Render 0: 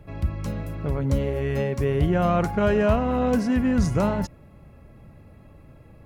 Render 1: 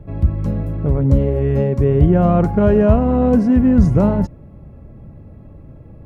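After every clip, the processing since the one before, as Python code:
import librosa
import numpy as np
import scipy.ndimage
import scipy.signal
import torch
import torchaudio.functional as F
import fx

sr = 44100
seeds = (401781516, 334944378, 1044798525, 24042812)

y = fx.tilt_shelf(x, sr, db=9.0, hz=1100.0)
y = y * librosa.db_to_amplitude(1.0)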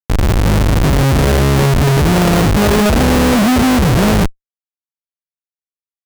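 y = fx.lowpass(x, sr, hz=1600.0, slope=6)
y = fx.schmitt(y, sr, flips_db=-21.5)
y = y * librosa.db_to_amplitude(5.0)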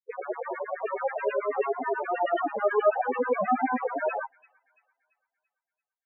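y = fx.filter_lfo_highpass(x, sr, shape='saw_down', hz=9.3, low_hz=400.0, high_hz=2400.0, q=0.95)
y = fx.spec_topn(y, sr, count=4)
y = fx.echo_wet_highpass(y, sr, ms=338, feedback_pct=43, hz=4800.0, wet_db=-7.5)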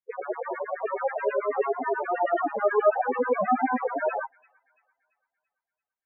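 y = scipy.signal.sosfilt(scipy.signal.butter(4, 2300.0, 'lowpass', fs=sr, output='sos'), x)
y = y * librosa.db_to_amplitude(1.5)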